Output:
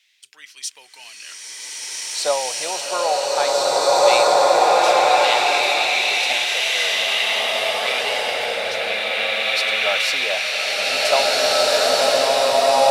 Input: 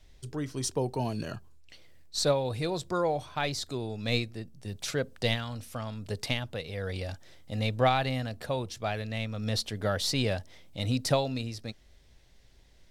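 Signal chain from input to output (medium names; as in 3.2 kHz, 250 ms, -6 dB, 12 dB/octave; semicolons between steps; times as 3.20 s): LFO high-pass square 0.26 Hz 720–2400 Hz; swelling reverb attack 1960 ms, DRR -11 dB; trim +3.5 dB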